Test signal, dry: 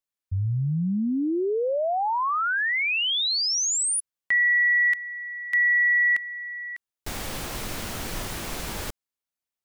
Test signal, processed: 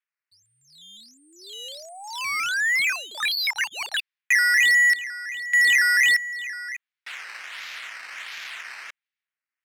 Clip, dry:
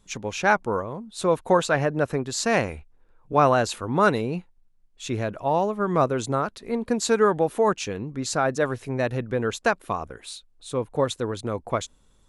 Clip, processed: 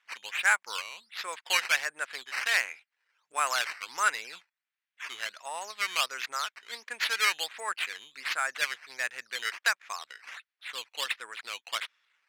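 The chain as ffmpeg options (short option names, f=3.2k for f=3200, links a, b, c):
-af "acrusher=samples=9:mix=1:aa=0.000001:lfo=1:lforange=9:lforate=1.4,highpass=f=1.9k:t=q:w=1.8,adynamicsmooth=sensitivity=4:basefreq=6.1k,volume=-1dB"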